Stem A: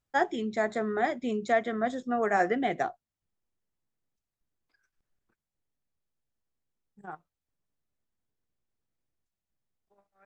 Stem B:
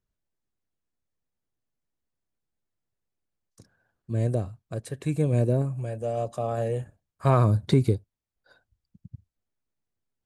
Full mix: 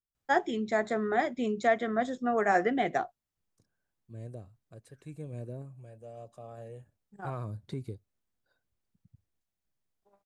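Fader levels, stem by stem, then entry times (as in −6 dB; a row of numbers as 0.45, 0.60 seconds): 0.0, −17.5 decibels; 0.15, 0.00 seconds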